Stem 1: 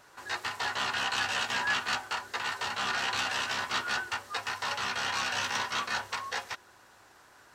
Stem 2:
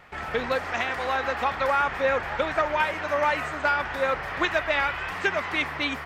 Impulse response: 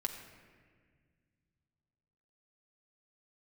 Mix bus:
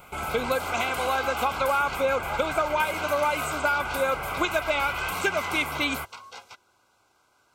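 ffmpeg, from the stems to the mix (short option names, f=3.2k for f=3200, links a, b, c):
-filter_complex "[0:a]volume=-7.5dB[a];[1:a]aexciter=amount=2.9:drive=9.5:freq=7.3k,volume=3dB[b];[a][b]amix=inputs=2:normalize=0,asuperstop=centerf=1800:order=20:qfactor=4.8,acompressor=threshold=-23dB:ratio=2"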